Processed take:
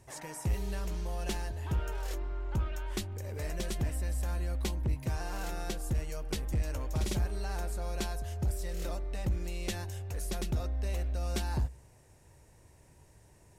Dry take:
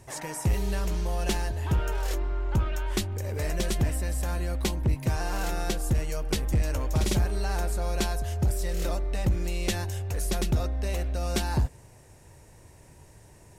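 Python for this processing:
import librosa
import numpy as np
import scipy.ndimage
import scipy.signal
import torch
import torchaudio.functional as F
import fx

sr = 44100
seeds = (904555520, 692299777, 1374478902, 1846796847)

y = fx.peak_eq(x, sr, hz=63.0, db=4.5, octaves=0.2)
y = y * 10.0 ** (-7.5 / 20.0)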